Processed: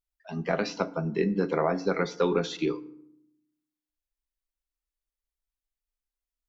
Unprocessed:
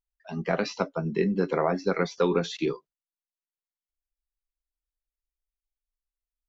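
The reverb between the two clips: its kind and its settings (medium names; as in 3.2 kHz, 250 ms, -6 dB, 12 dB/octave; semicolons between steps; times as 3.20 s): FDN reverb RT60 0.72 s, low-frequency decay 1.55×, high-frequency decay 0.65×, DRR 14 dB; trim -1 dB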